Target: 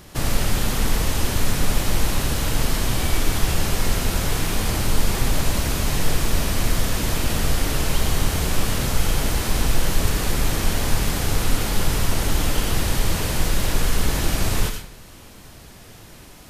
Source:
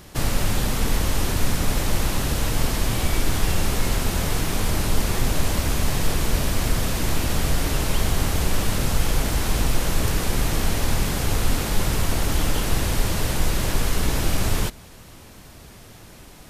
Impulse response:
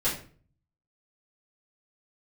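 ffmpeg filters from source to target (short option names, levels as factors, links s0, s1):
-filter_complex "[0:a]asplit=2[s0][s1];[s1]tiltshelf=f=970:g=-6.5[s2];[1:a]atrim=start_sample=2205,asetrate=39690,aresample=44100,adelay=76[s3];[s2][s3]afir=irnorm=-1:irlink=0,volume=0.126[s4];[s0][s4]amix=inputs=2:normalize=0"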